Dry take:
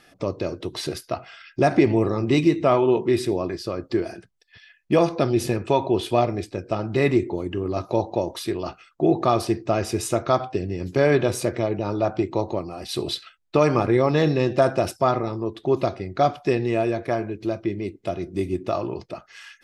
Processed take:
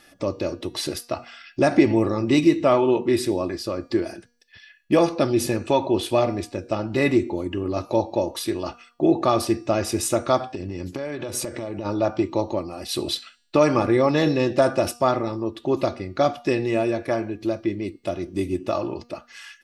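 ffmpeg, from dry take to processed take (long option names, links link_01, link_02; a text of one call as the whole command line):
ffmpeg -i in.wav -filter_complex "[0:a]asplit=3[link_01][link_02][link_03];[link_01]afade=type=out:start_time=10.47:duration=0.02[link_04];[link_02]acompressor=threshold=-25dB:ratio=16:attack=3.2:release=140:knee=1:detection=peak,afade=type=in:start_time=10.47:duration=0.02,afade=type=out:start_time=11.84:duration=0.02[link_05];[link_03]afade=type=in:start_time=11.84:duration=0.02[link_06];[link_04][link_05][link_06]amix=inputs=3:normalize=0,highshelf=frequency=6500:gain=6.5,aecho=1:1:3.5:0.36,bandreject=frequency=238.9:width_type=h:width=4,bandreject=frequency=477.8:width_type=h:width=4,bandreject=frequency=716.7:width_type=h:width=4,bandreject=frequency=955.6:width_type=h:width=4,bandreject=frequency=1194.5:width_type=h:width=4,bandreject=frequency=1433.4:width_type=h:width=4,bandreject=frequency=1672.3:width_type=h:width=4,bandreject=frequency=1911.2:width_type=h:width=4,bandreject=frequency=2150.1:width_type=h:width=4,bandreject=frequency=2389:width_type=h:width=4,bandreject=frequency=2627.9:width_type=h:width=4,bandreject=frequency=2866.8:width_type=h:width=4,bandreject=frequency=3105.7:width_type=h:width=4,bandreject=frequency=3344.6:width_type=h:width=4,bandreject=frequency=3583.5:width_type=h:width=4,bandreject=frequency=3822.4:width_type=h:width=4,bandreject=frequency=4061.3:width_type=h:width=4,bandreject=frequency=4300.2:width_type=h:width=4,bandreject=frequency=4539.1:width_type=h:width=4,bandreject=frequency=4778:width_type=h:width=4,bandreject=frequency=5016.9:width_type=h:width=4,bandreject=frequency=5255.8:width_type=h:width=4,bandreject=frequency=5494.7:width_type=h:width=4,bandreject=frequency=5733.6:width_type=h:width=4,bandreject=frequency=5972.5:width_type=h:width=4,bandreject=frequency=6211.4:width_type=h:width=4,bandreject=frequency=6450.3:width_type=h:width=4,bandreject=frequency=6689.2:width_type=h:width=4,bandreject=frequency=6928.1:width_type=h:width=4,bandreject=frequency=7167:width_type=h:width=4,bandreject=frequency=7405.9:width_type=h:width=4,bandreject=frequency=7644.8:width_type=h:width=4,bandreject=frequency=7883.7:width_type=h:width=4,bandreject=frequency=8122.6:width_type=h:width=4,bandreject=frequency=8361.5:width_type=h:width=4,bandreject=frequency=8600.4:width_type=h:width=4,bandreject=frequency=8839.3:width_type=h:width=4" out.wav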